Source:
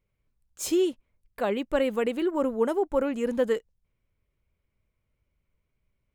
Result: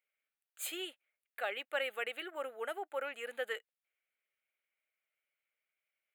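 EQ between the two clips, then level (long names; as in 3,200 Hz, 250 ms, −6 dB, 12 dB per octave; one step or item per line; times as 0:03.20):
four-pole ladder high-pass 730 Hz, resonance 40%
parametric band 1,300 Hz +2 dB
phaser with its sweep stopped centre 2,400 Hz, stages 4
+7.0 dB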